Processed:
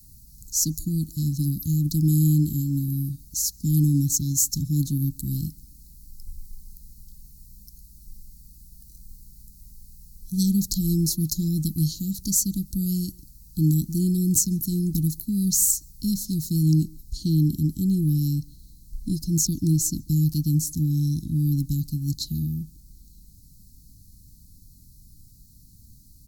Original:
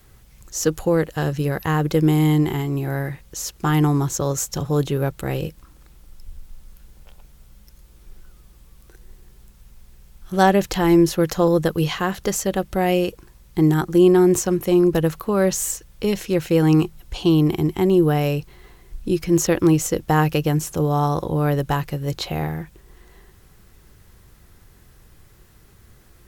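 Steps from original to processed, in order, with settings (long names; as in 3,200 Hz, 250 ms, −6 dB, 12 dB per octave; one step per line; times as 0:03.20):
Chebyshev band-stop filter 280–4,200 Hz, order 5
high-shelf EQ 8,200 Hz +10.5 dB, from 0:16.63 +4.5 dB
far-end echo of a speakerphone 140 ms, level −21 dB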